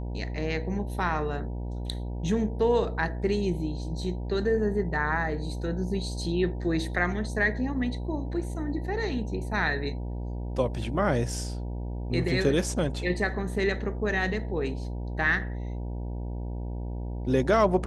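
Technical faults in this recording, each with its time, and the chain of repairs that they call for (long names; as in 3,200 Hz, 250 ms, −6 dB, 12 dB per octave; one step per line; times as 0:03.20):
mains buzz 60 Hz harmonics 16 −33 dBFS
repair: hum removal 60 Hz, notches 16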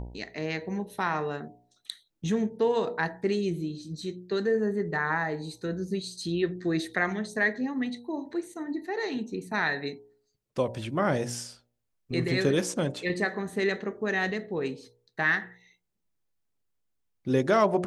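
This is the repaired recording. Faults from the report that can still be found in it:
none of them is left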